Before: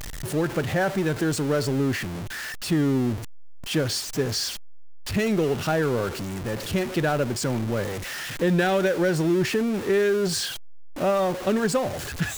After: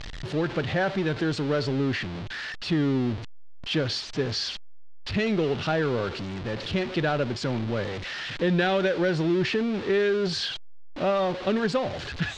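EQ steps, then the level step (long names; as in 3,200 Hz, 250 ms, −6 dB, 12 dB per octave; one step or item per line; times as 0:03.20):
transistor ladder low-pass 4,900 Hz, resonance 35%
+5.5 dB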